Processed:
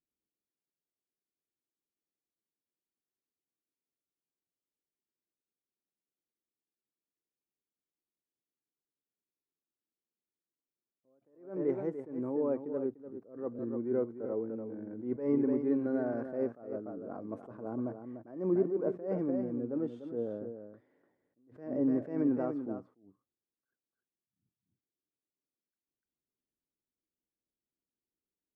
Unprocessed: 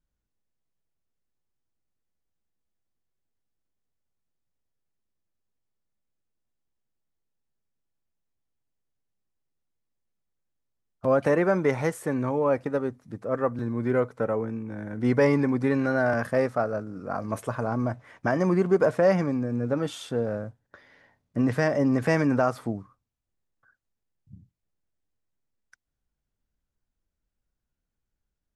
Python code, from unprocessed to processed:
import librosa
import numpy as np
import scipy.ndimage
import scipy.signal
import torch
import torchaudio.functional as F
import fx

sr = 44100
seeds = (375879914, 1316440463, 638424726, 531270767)

y = fx.bandpass_q(x, sr, hz=340.0, q=2.2)
y = y + 10.0 ** (-9.0 / 20.0) * np.pad(y, (int(295 * sr / 1000.0), 0))[:len(y)]
y = fx.attack_slew(y, sr, db_per_s=120.0)
y = y * librosa.db_to_amplitude(-2.0)